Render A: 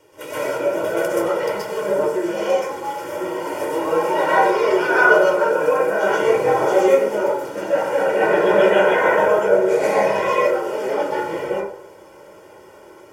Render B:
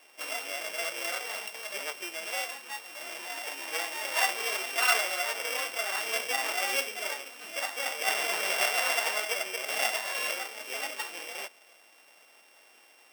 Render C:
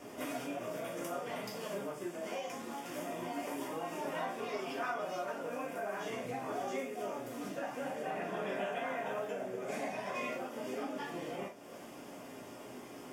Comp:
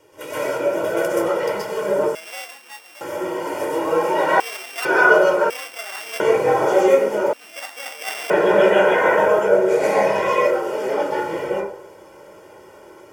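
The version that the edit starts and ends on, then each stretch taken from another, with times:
A
0:02.15–0:03.01: punch in from B
0:04.40–0:04.85: punch in from B
0:05.50–0:06.20: punch in from B
0:07.33–0:08.30: punch in from B
not used: C

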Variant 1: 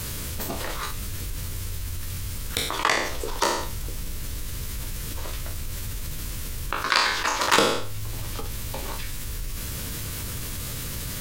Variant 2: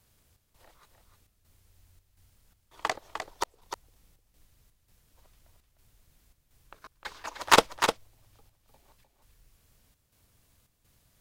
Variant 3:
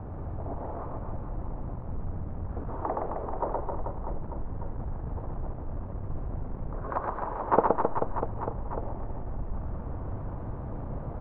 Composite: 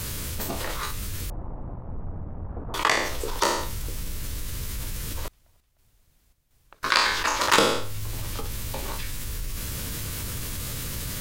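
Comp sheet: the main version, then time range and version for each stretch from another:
1
0:01.30–0:02.74: punch in from 3
0:05.28–0:06.83: punch in from 2

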